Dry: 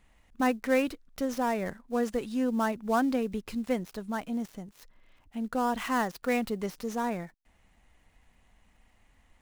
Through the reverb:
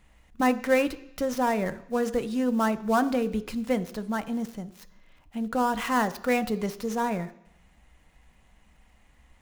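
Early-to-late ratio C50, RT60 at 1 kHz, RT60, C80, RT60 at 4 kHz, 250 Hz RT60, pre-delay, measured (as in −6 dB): 16.0 dB, 0.80 s, 0.75 s, 19.5 dB, 0.85 s, 0.80 s, 3 ms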